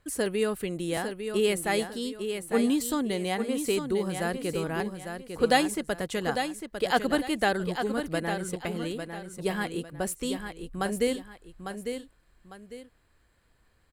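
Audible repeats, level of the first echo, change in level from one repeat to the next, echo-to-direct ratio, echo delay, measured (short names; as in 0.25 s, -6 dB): 2, -7.5 dB, -10.0 dB, -7.0 dB, 0.851 s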